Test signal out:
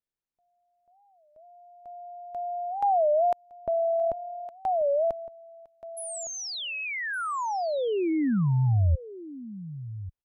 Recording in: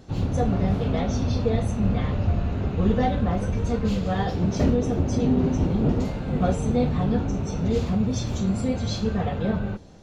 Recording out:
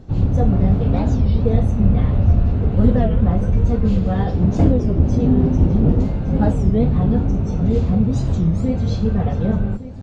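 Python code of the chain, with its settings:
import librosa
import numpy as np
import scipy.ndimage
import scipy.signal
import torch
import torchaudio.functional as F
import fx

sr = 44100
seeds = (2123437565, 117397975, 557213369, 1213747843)

p1 = fx.tilt_eq(x, sr, slope=-2.5)
p2 = p1 + fx.echo_single(p1, sr, ms=1162, db=-15.0, dry=0)
y = fx.record_warp(p2, sr, rpm=33.33, depth_cents=250.0)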